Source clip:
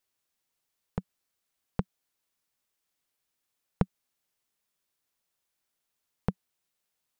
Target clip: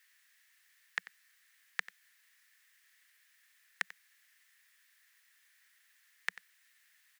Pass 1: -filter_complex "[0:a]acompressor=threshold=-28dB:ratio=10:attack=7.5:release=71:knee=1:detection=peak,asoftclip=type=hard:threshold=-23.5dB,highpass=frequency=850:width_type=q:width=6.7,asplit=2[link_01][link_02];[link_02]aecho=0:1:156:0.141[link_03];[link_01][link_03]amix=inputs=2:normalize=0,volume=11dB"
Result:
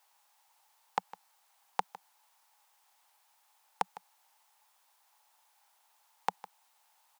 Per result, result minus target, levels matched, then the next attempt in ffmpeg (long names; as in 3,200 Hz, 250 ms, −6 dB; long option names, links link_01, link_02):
1,000 Hz band +15.5 dB; echo 64 ms late
-filter_complex "[0:a]acompressor=threshold=-28dB:ratio=10:attack=7.5:release=71:knee=1:detection=peak,asoftclip=type=hard:threshold=-23.5dB,highpass=frequency=1800:width_type=q:width=6.7,asplit=2[link_01][link_02];[link_02]aecho=0:1:156:0.141[link_03];[link_01][link_03]amix=inputs=2:normalize=0,volume=11dB"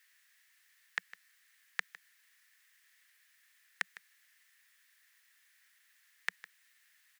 echo 64 ms late
-filter_complex "[0:a]acompressor=threshold=-28dB:ratio=10:attack=7.5:release=71:knee=1:detection=peak,asoftclip=type=hard:threshold=-23.5dB,highpass=frequency=1800:width_type=q:width=6.7,asplit=2[link_01][link_02];[link_02]aecho=0:1:92:0.141[link_03];[link_01][link_03]amix=inputs=2:normalize=0,volume=11dB"